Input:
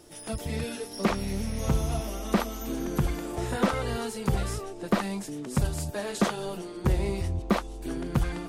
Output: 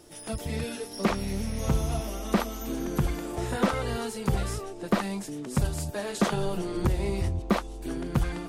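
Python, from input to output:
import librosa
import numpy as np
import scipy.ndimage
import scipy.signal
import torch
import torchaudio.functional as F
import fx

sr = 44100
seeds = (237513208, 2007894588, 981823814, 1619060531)

y = fx.band_squash(x, sr, depth_pct=100, at=(6.32, 7.29))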